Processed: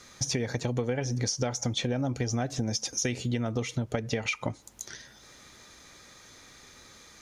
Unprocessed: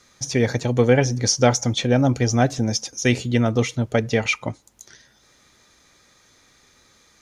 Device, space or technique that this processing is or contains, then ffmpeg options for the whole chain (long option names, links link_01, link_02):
serial compression, peaks first: -af "acompressor=threshold=-26dB:ratio=5,acompressor=threshold=-32dB:ratio=2.5,volume=4dB"